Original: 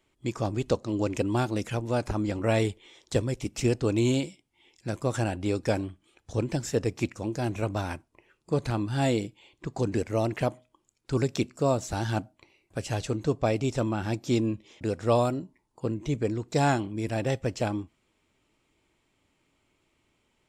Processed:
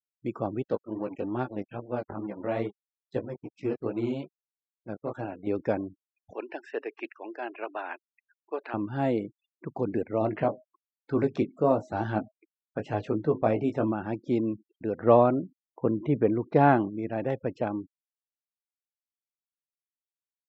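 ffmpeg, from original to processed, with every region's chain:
ffmpeg -i in.wav -filter_complex "[0:a]asettb=1/sr,asplit=3[link_01][link_02][link_03];[link_01]atrim=end=0.634[link_04];[link_02]atrim=start=0.63:end=5.47,asetpts=PTS-STARTPTS,afade=type=in:duration=0.004:curve=qsin,afade=type=out:start_time=4.836:duration=0.004:curve=qsin,equalizer=frequency=4200:width=1.4:gain=3,flanger=delay=15:depth=6.1:speed=2.4,aeval=exprs='sgn(val(0))*max(abs(val(0))-0.00841,0)':channel_layout=same[link_05];[link_03]atrim=start=5.466[link_06];[link_04][link_05]acrossfade=duration=0.004:curve1=hsin:curve2=qsin[link_07];[link_07][link_06]acrossfade=duration=0.004:curve1=qsin:curve2=hsin,asettb=1/sr,asplit=3[link_08][link_09][link_10];[link_08]atrim=end=6.344[link_11];[link_09]atrim=start=6.34:end=8.74,asetpts=PTS-STARTPTS,afade=type=in:duration=0.004:curve=qsin,afade=type=out:start_time=2.396:duration=0.004:curve=qsin,highpass=frequency=400:width=0.5412,highpass=frequency=400:width=1.3066,equalizer=frequency=510:width_type=q:width=4:gain=-8,equalizer=frequency=1700:width_type=q:width=4:gain=6,equalizer=frequency=2700:width_type=q:width=4:gain=8,equalizer=frequency=6800:width_type=q:width=4:gain=-8,lowpass=frequency=9600:width=0.5412,lowpass=frequency=9600:width=1.3066,acrusher=bits=5:mode=log:mix=0:aa=0.000001[link_12];[link_10]atrim=start=8.736[link_13];[link_11][link_12]acrossfade=duration=0.004:curve1=hsin:curve2=qsin[link_14];[link_14][link_13]acrossfade=duration=0.004:curve1=qsin:curve2=hsin,asettb=1/sr,asplit=3[link_15][link_16][link_17];[link_15]atrim=end=10.204[link_18];[link_16]atrim=start=10.2:end=13.92,asetpts=PTS-STARTPTS,afade=type=in:duration=0.004:curve=qsin,afade=type=out:start_time=3.716:duration=0.004:curve=qsin,acontrast=52,flanger=delay=2.6:depth=6.9:regen=-74:speed=1.1:shape=sinusoidal,asplit=2[link_19][link_20];[link_20]adelay=19,volume=-7dB[link_21];[link_19][link_21]amix=inputs=2:normalize=0,atrim=end_sample=164052[link_22];[link_17]atrim=start=13.916[link_23];[link_18][link_22]acrossfade=duration=0.004:curve1=hsin:curve2=qsin[link_24];[link_24][link_23]acrossfade=duration=0.004:curve1=qsin:curve2=hsin,asettb=1/sr,asplit=3[link_25][link_26][link_27];[link_25]atrim=end=14.984[link_28];[link_26]atrim=start=14.98:end=16.9,asetpts=PTS-STARTPTS,afade=type=in:duration=0.004:curve=qsin,afade=type=out:start_time=1.916:duration=0.004:curve=qsin,lowpass=3500,acontrast=34[link_29];[link_27]atrim=start=16.896[link_30];[link_28][link_29]acrossfade=duration=0.004:curve1=hsin:curve2=qsin[link_31];[link_31][link_30]acrossfade=duration=0.004:curve1=qsin:curve2=hsin,highpass=170,afftfilt=real='re*gte(hypot(re,im),0.00891)':imag='im*gte(hypot(re,im),0.00891)':win_size=1024:overlap=0.75,lowpass=1600" out.wav

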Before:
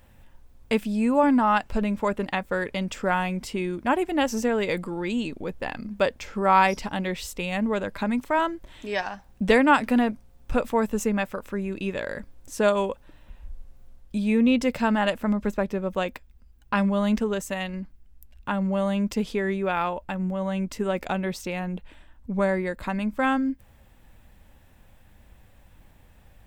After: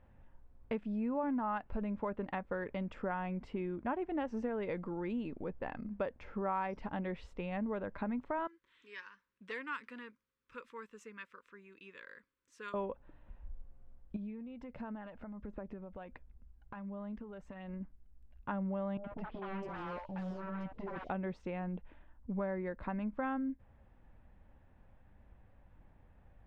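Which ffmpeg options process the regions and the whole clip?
ffmpeg -i in.wav -filter_complex "[0:a]asettb=1/sr,asplit=3[link_01][link_02][link_03];[link_01]atrim=end=8.474[link_04];[link_02]atrim=start=8.47:end=12.74,asetpts=PTS-STARTPTS,afade=type=in:duration=0.004:curve=qsin,afade=type=out:start_time=4.266:duration=0.004:curve=qsin,asuperstop=centerf=710:order=8:qfactor=1.6,acontrast=87,aderivative[link_05];[link_03]atrim=start=12.736[link_06];[link_04][link_05]acrossfade=duration=0.004:curve1=hsin:curve2=qsin[link_07];[link_07][link_06]acrossfade=duration=0.004:curve1=qsin:curve2=hsin,asettb=1/sr,asplit=3[link_08][link_09][link_10];[link_08]atrim=end=14.164[link_11];[link_09]atrim=start=14.16:end=17.81,asetpts=PTS-STARTPTS,afade=type=in:duration=0.004:curve=qsin,afade=type=out:start_time=3.646:duration=0.004:curve=qsin,highshelf=frequency=8400:gain=-3,acompressor=threshold=-35dB:ratio=10:attack=3.2:release=140:knee=1:detection=peak,aphaser=in_gain=1:out_gain=1:delay=1.4:decay=0.35:speed=1.4:type=sinusoidal[link_12];[link_10]atrim=start=17.806[link_13];[link_11][link_12]acrossfade=duration=0.004:curve1=hsin:curve2=qsin[link_14];[link_14][link_13]acrossfade=duration=0.004:curve1=qsin:curve2=hsin,asettb=1/sr,asplit=3[link_15][link_16][link_17];[link_15]atrim=end=18.974[link_18];[link_16]atrim=start=18.97:end=21.1,asetpts=PTS-STARTPTS,afade=type=in:duration=0.004:curve=qsin,afade=type=out:start_time=2.126:duration=0.004:curve=qsin,aeval=exprs='0.0447*(abs(mod(val(0)/0.0447+3,4)-2)-1)':channel_layout=same,acrossover=split=690|3900[link_19][link_20][link_21];[link_20]adelay=70[link_22];[link_21]adelay=510[link_23];[link_19][link_22][link_23]amix=inputs=3:normalize=0,atrim=end_sample=93933[link_24];[link_17]atrim=start=21.096[link_25];[link_18][link_24]acrossfade=duration=0.004:curve1=hsin:curve2=qsin[link_26];[link_26][link_25]acrossfade=duration=0.004:curve1=qsin:curve2=hsin,lowpass=1600,acompressor=threshold=-27dB:ratio=3,volume=-7.5dB" out.wav

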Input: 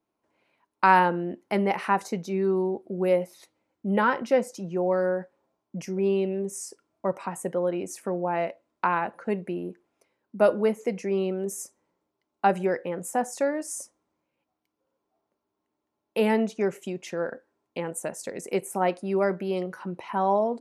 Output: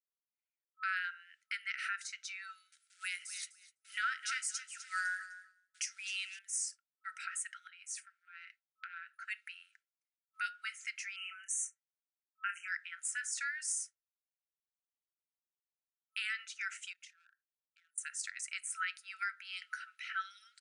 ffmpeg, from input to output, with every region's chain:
ffmpeg -i in.wav -filter_complex "[0:a]asettb=1/sr,asplit=3[link_01][link_02][link_03];[link_01]atrim=end=2.724[link_04];[link_02]atrim=start=2.72:end=6.39,asetpts=PTS-STARTPTS,afade=type=in:duration=0.004:curve=qsin,afade=type=out:start_time=3.666:duration=0.004:curve=qsin,aemphasis=mode=production:type=75kf,acrusher=bits=9:mode=log:mix=0:aa=0.000001,aecho=1:1:253|506|759:0.178|0.0516|0.015,atrim=end_sample=161847[link_05];[link_03]atrim=start=6.386[link_06];[link_04][link_05]acrossfade=duration=0.004:curve1=hsin:curve2=qsin[link_07];[link_07][link_06]acrossfade=duration=0.004:curve1=qsin:curve2=hsin,asettb=1/sr,asplit=3[link_08][link_09][link_10];[link_08]atrim=end=7.674[link_11];[link_09]atrim=start=7.67:end=9.23,asetpts=PTS-STARTPTS,afade=type=in:duration=0.004:curve=qsin,afade=type=out:start_time=1.556:duration=0.004:curve=qsin,aecho=1:1:6.6:0.37,atrim=end_sample=68796,acompressor=threshold=-37dB:ratio=10:attack=3.2:release=140:knee=1:detection=peak[link_12];[link_10]atrim=start=9.226[link_13];[link_11][link_12]acrossfade=duration=0.004:curve1=hsin:curve2=qsin[link_14];[link_14][link_13]acrossfade=duration=0.004:curve1=qsin:curve2=hsin,asettb=1/sr,asplit=3[link_15][link_16][link_17];[link_15]atrim=end=11.164[link_18];[link_16]atrim=start=11.16:end=12.68,asetpts=PTS-STARTPTS,afade=type=in:duration=0.004:curve=qsin,afade=type=out:start_time=1.516:duration=0.004:curve=qsin,asuperstop=centerf=4200:order=20:qfactor=1.6,asplit=2[link_19][link_20];[link_20]adelay=28,volume=-8dB[link_21];[link_19][link_21]amix=inputs=2:normalize=0,atrim=end_sample=67032[link_22];[link_17]atrim=start=12.676[link_23];[link_18][link_22]acrossfade=duration=0.004:curve1=hsin:curve2=qsin[link_24];[link_24][link_23]acrossfade=duration=0.004:curve1=qsin:curve2=hsin,asettb=1/sr,asplit=3[link_25][link_26][link_27];[link_25]atrim=end=16.934[link_28];[link_26]atrim=start=16.93:end=17.98,asetpts=PTS-STARTPTS,afade=type=in:duration=0.004:curve=qsin,afade=type=out:start_time=1.046:duration=0.004:curve=qsin,volume=24.5dB,asoftclip=hard,volume=-24.5dB,acompressor=threshold=-45dB:ratio=8:attack=3.2:release=140:knee=1:detection=peak,tremolo=f=36:d=0.333[link_29];[link_27]atrim=start=17.976[link_30];[link_28][link_29]acrossfade=duration=0.004:curve1=hsin:curve2=qsin[link_31];[link_31][link_30]acrossfade=duration=0.004:curve1=qsin:curve2=hsin,agate=range=-33dB:threshold=-40dB:ratio=3:detection=peak,afftfilt=real='re*between(b*sr/4096,1300,10000)':imag='im*between(b*sr/4096,1300,10000)':win_size=4096:overlap=0.75,alimiter=level_in=4.5dB:limit=-24dB:level=0:latency=1:release=389,volume=-4.5dB,volume=2.5dB" out.wav

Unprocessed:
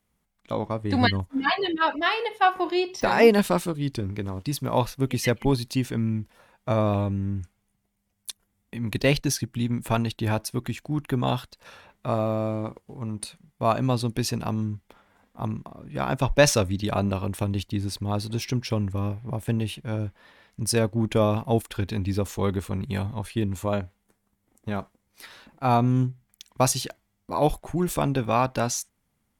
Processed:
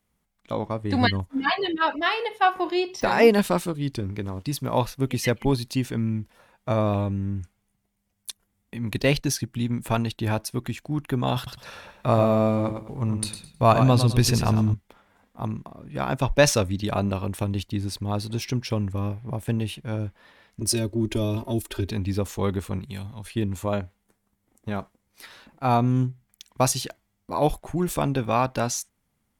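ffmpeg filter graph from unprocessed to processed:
ffmpeg -i in.wav -filter_complex "[0:a]asettb=1/sr,asplit=3[link_01][link_02][link_03];[link_01]atrim=end=11.364[link_04];[link_02]atrim=start=11.36:end=14.74,asetpts=PTS-STARTPTS,afade=type=in:duration=0.004:curve=qsin,afade=type=out:start_time=3.376:duration=0.004:curve=qsin,asubboost=boost=2.5:cutoff=140,acontrast=34,aecho=1:1:105|210|315:0.398|0.104|0.0269,atrim=end_sample=149058[link_05];[link_03]atrim=start=14.736[link_06];[link_04][link_05]acrossfade=duration=0.004:curve1=hsin:curve2=qsin[link_07];[link_07][link_06]acrossfade=duration=0.004:curve1=qsin:curve2=hsin,asettb=1/sr,asplit=3[link_08][link_09][link_10];[link_08]atrim=end=20.604[link_11];[link_09]atrim=start=20.6:end=21.91,asetpts=PTS-STARTPTS,afade=type=in:duration=0.004:curve=qsin,afade=type=out:start_time=1.306:duration=0.004:curve=qsin,equalizer=frequency=400:width=2.3:gain=13,acrossover=split=200|3000[link_12][link_13][link_14];[link_13]acompressor=threshold=-37dB:ratio=2.5:attack=3.2:release=140:knee=2.83:detection=peak[link_15];[link_12][link_15][link_14]amix=inputs=3:normalize=0,aecho=1:1:3.2:0.97,atrim=end_sample=57771[link_16];[link_10]atrim=start=21.906[link_17];[link_11][link_16]acrossfade=duration=0.004:curve1=hsin:curve2=qsin[link_18];[link_18][link_17]acrossfade=duration=0.004:curve1=qsin:curve2=hsin,asettb=1/sr,asplit=3[link_19][link_20][link_21];[link_19]atrim=end=22.794[link_22];[link_20]atrim=start=22.79:end=23.26,asetpts=PTS-STARTPTS,afade=type=in:duration=0.004:curve=qsin,afade=type=out:start_time=0.466:duration=0.004:curve=qsin,lowshelf=frequency=440:gain=-6.5,acrossover=split=260|3000[link_23][link_24][link_25];[link_24]acompressor=threshold=-50dB:ratio=2:attack=3.2:release=140:knee=2.83:detection=peak[link_26];[link_23][link_26][link_25]amix=inputs=3:normalize=0[link_27];[link_21]atrim=start=23.256[link_28];[link_22][link_27]acrossfade=duration=0.004:curve1=hsin:curve2=qsin[link_29];[link_29][link_28]acrossfade=duration=0.004:curve1=qsin:curve2=hsin" out.wav

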